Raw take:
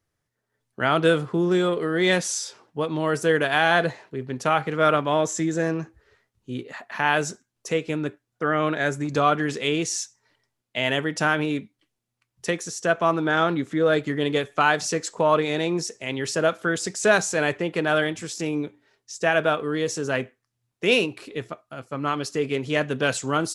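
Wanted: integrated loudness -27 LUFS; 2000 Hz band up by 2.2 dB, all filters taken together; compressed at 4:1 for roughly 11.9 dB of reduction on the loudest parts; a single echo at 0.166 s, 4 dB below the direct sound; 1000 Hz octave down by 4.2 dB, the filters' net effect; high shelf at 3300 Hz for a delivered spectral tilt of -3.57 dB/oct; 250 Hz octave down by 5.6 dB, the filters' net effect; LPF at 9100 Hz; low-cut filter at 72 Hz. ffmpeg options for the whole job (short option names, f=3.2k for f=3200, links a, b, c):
-af "highpass=72,lowpass=9.1k,equalizer=f=250:t=o:g=-8,equalizer=f=1k:t=o:g=-8,equalizer=f=2k:t=o:g=7.5,highshelf=f=3.3k:g=-4,acompressor=threshold=-30dB:ratio=4,aecho=1:1:166:0.631,volume=5.5dB"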